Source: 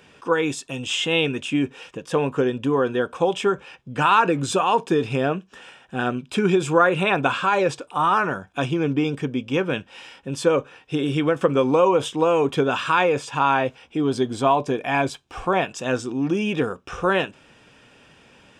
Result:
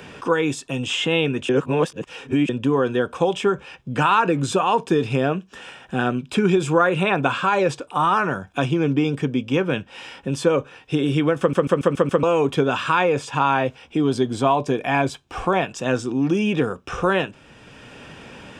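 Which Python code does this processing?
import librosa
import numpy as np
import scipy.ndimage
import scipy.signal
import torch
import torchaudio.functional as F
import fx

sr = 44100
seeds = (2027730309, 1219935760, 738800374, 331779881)

y = fx.edit(x, sr, fx.reverse_span(start_s=1.49, length_s=1.0),
    fx.stutter_over(start_s=11.39, slice_s=0.14, count=6), tone=tone)
y = fx.low_shelf(y, sr, hz=200.0, db=4.5)
y = fx.band_squash(y, sr, depth_pct=40)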